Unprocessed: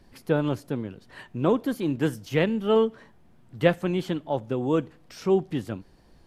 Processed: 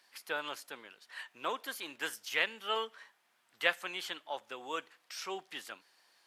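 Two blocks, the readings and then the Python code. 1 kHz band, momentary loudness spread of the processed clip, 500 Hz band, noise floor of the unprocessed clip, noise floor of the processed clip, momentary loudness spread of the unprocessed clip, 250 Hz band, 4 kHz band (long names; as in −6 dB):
−6.0 dB, 16 LU, −17.5 dB, −56 dBFS, −74 dBFS, 13 LU, −26.0 dB, +1.5 dB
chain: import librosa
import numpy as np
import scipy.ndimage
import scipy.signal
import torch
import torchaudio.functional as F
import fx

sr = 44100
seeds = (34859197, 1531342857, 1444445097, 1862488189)

y = scipy.signal.sosfilt(scipy.signal.butter(2, 1400.0, 'highpass', fs=sr, output='sos'), x)
y = y * 10.0 ** (1.5 / 20.0)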